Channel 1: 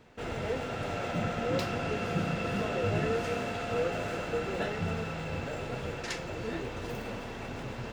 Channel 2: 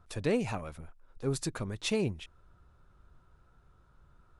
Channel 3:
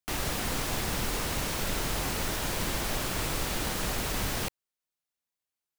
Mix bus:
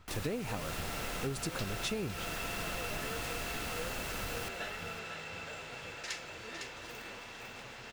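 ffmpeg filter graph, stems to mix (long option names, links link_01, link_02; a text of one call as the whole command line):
ffmpeg -i stem1.wav -i stem2.wav -i stem3.wav -filter_complex "[0:a]tiltshelf=frequency=810:gain=-8.5,volume=-9dB,asplit=2[link_01][link_02];[link_02]volume=-6.5dB[link_03];[1:a]volume=1.5dB[link_04];[2:a]volume=-9.5dB,asplit=2[link_05][link_06];[link_06]volume=-13dB[link_07];[link_03][link_07]amix=inputs=2:normalize=0,aecho=0:1:506:1[link_08];[link_01][link_04][link_05][link_08]amix=inputs=4:normalize=0,acompressor=threshold=-32dB:ratio=12" out.wav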